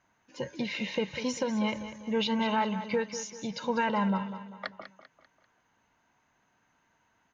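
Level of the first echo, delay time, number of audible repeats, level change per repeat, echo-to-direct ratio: −11.5 dB, 196 ms, 4, −7.5 dB, −10.5 dB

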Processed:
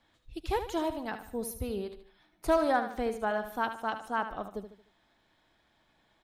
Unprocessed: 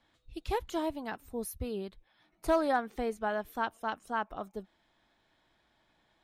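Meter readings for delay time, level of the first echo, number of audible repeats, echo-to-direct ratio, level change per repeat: 75 ms, −10.0 dB, 4, −9.0 dB, −7.5 dB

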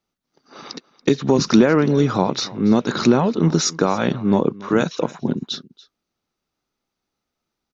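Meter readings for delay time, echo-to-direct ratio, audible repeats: 284 ms, −20.5 dB, 1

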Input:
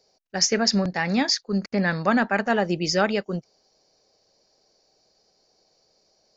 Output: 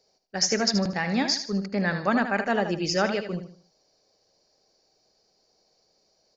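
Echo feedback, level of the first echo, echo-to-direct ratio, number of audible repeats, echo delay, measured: 34%, −9.0 dB, −8.5 dB, 3, 77 ms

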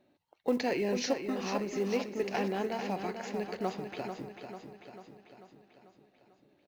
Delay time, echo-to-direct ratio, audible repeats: 443 ms, −6.0 dB, 6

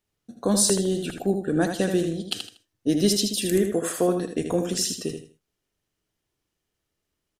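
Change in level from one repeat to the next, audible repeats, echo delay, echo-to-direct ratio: −11.5 dB, 3, 79 ms, −6.0 dB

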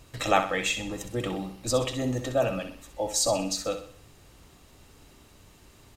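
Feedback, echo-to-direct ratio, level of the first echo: 44%, −8.5 dB, −9.5 dB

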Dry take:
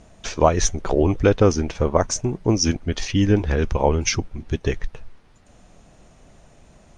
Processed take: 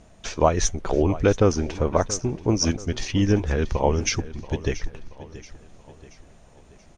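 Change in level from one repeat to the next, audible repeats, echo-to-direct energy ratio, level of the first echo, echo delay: −7.0 dB, 3, −15.5 dB, −16.5 dB, 680 ms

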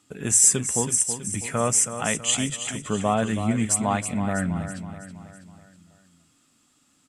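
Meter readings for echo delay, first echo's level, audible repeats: 325 ms, −10.0 dB, 5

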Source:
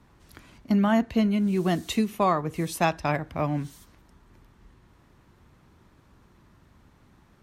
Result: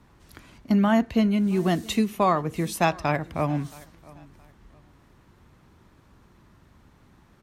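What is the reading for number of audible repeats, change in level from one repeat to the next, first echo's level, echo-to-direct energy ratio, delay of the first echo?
2, −11.0 dB, −23.0 dB, −22.5 dB, 672 ms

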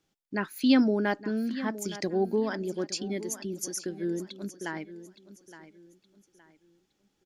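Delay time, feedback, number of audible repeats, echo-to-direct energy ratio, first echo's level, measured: 867 ms, 32%, 3, −14.0 dB, −14.5 dB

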